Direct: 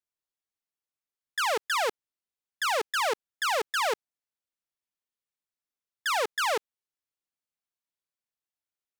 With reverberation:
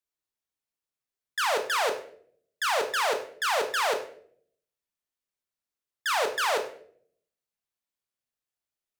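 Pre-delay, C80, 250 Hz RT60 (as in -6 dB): 18 ms, 14.0 dB, 0.85 s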